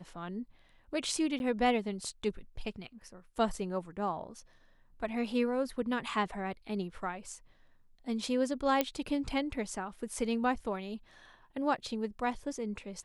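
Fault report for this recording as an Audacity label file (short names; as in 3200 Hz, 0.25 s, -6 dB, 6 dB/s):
1.390000	1.400000	gap 11 ms
8.810000	8.810000	pop -13 dBFS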